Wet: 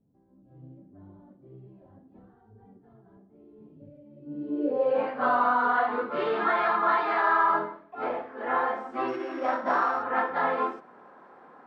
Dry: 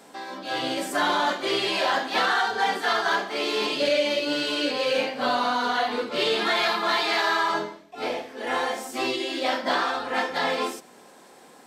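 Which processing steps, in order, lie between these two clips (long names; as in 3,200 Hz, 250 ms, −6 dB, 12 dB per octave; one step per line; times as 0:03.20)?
0:09.08–0:10.03: samples sorted by size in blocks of 8 samples
low-pass filter sweep 110 Hz → 1,300 Hz, 0:04.12–0:05.10
level −3.5 dB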